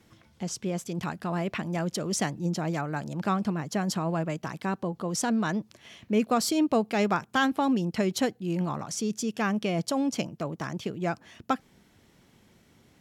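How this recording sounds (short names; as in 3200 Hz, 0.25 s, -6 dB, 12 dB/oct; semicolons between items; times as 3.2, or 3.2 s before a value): noise floor -62 dBFS; spectral tilt -5.0 dB/oct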